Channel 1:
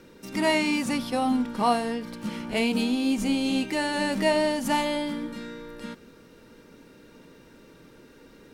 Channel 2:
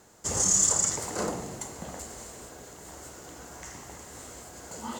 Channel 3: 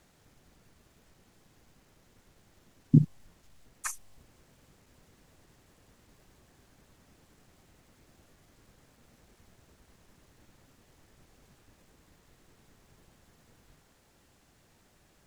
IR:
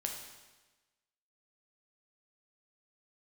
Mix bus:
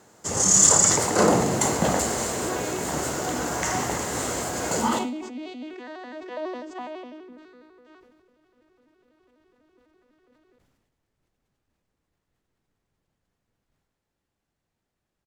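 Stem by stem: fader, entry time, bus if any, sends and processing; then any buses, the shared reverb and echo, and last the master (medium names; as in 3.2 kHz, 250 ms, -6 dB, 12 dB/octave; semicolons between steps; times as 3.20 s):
-6.0 dB, 2.05 s, send -19.5 dB, no echo send, vocoder on a broken chord major triad, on B3, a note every 83 ms; high-pass 450 Hz 12 dB/octave
+2.0 dB, 0.00 s, send -18.5 dB, no echo send, high-pass 98 Hz; level rider gain up to 15 dB
-18.0 dB, 0.00 s, no send, echo send -8.5 dB, none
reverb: on, RT60 1.2 s, pre-delay 8 ms
echo: delay 190 ms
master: treble shelf 4.8 kHz -5 dB; decay stretcher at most 39 dB/s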